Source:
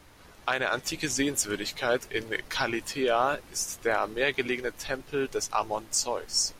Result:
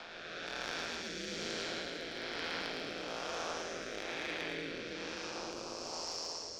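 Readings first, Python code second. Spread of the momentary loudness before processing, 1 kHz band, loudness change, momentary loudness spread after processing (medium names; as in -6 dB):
5 LU, -13.0 dB, -11.0 dB, 3 LU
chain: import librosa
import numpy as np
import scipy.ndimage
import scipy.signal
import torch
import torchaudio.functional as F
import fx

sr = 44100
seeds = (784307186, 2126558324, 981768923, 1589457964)

p1 = fx.spec_blur(x, sr, span_ms=823.0)
p2 = fx.low_shelf(p1, sr, hz=260.0, db=-11.0)
p3 = fx.cheby_harmonics(p2, sr, harmonics=(2, 4, 5), levels_db=(-7, -17, -27), full_scale_db=-20.5)
p4 = fx.ladder_lowpass(p3, sr, hz=5500.0, resonance_pct=50)
p5 = 10.0 ** (-38.5 / 20.0) * (np.abs((p4 / 10.0 ** (-38.5 / 20.0) + 3.0) % 4.0 - 2.0) - 1.0)
p6 = p4 + (p5 * 10.0 ** (-8.0 / 20.0))
p7 = p6 * np.sin(2.0 * np.pi * 83.0 * np.arange(len(p6)) / sr)
p8 = fx.rotary(p7, sr, hz=1.1)
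p9 = p8 + fx.echo_single(p8, sr, ms=110, db=-5.5, dry=0)
p10 = fx.band_squash(p9, sr, depth_pct=40)
y = p10 * 10.0 ** (5.5 / 20.0)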